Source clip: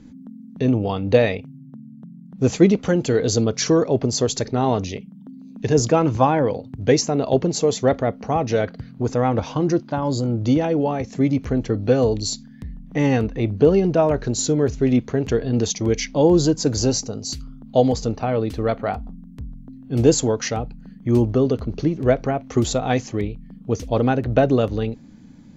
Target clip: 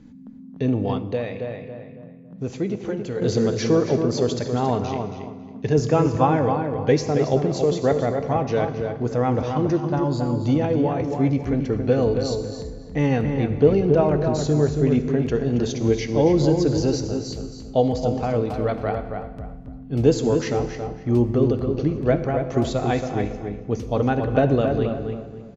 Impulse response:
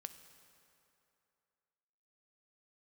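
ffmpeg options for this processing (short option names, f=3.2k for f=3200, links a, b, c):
-filter_complex "[0:a]asplit=2[a][b];[b]adelay=275,lowpass=f=2.4k:p=1,volume=-5.5dB,asplit=2[c][d];[d]adelay=275,lowpass=f=2.4k:p=1,volume=0.3,asplit=2[e][f];[f]adelay=275,lowpass=f=2.4k:p=1,volume=0.3,asplit=2[g][h];[h]adelay=275,lowpass=f=2.4k:p=1,volume=0.3[i];[a][c][e][g][i]amix=inputs=5:normalize=0[j];[1:a]atrim=start_sample=2205,afade=t=out:st=0.39:d=0.01,atrim=end_sample=17640,asetrate=37926,aresample=44100[k];[j][k]afir=irnorm=-1:irlink=0,asettb=1/sr,asplit=3[l][m][n];[l]atrim=end=0.984[o];[m]atrim=start=0.98:end=3.22,asetpts=PTS-STARTPTS,afade=t=in:d=0.004:c=qsin,afade=t=out:st=2.236:d=0.004:c=qsin,acompressor=threshold=-40dB:ratio=1.5[p];[n]atrim=start=3.216[q];[o][p]acrossfade=d=0.004:c1=hsin:c2=qsin[r];[r][q]acrossfade=d=0.004:c1=qsin:c2=hsin,highshelf=f=5.5k:g=-7.5,acrossover=split=6000[s][t];[t]acompressor=threshold=-51dB:ratio=4:attack=1:release=60[u];[s][u]amix=inputs=2:normalize=0,volume=2dB"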